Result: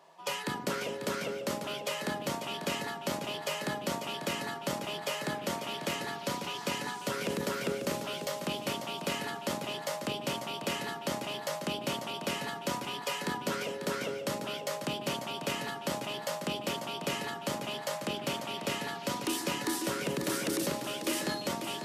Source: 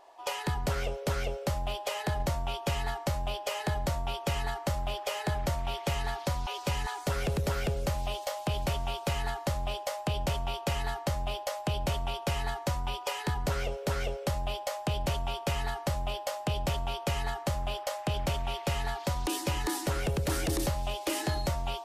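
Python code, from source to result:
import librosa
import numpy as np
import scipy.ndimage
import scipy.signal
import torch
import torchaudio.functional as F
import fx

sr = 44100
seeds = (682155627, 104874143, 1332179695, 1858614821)

y = fx.octave_divider(x, sr, octaves=2, level_db=3.0)
y = scipy.signal.sosfilt(scipy.signal.butter(4, 190.0, 'highpass', fs=sr, output='sos'), y)
y = fx.peak_eq(y, sr, hz=760.0, db=-9.0, octaves=0.38)
y = y + 10.0 ** (-8.5 / 20.0) * np.pad(y, (int(544 * sr / 1000.0), 0))[:len(y)]
y = fx.sustainer(y, sr, db_per_s=72.0)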